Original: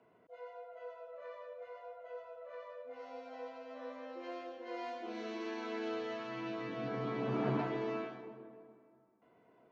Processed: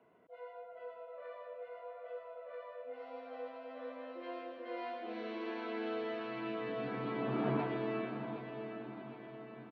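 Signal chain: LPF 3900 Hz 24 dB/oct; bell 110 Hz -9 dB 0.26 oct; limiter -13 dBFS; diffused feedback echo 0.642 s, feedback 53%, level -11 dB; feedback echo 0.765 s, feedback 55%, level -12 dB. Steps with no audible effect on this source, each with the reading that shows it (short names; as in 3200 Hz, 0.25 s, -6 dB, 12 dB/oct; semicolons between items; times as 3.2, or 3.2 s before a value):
limiter -13 dBFS: input peak -21.5 dBFS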